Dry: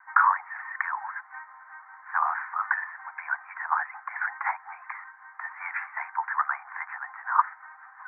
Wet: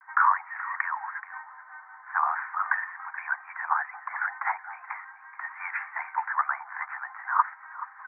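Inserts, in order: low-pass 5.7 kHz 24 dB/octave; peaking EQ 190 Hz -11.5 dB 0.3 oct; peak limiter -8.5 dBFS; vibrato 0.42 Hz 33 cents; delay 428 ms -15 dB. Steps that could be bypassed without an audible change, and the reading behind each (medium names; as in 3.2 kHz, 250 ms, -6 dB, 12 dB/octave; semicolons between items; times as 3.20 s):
low-pass 5.7 kHz: input has nothing above 2.6 kHz; peaking EQ 190 Hz: input has nothing below 600 Hz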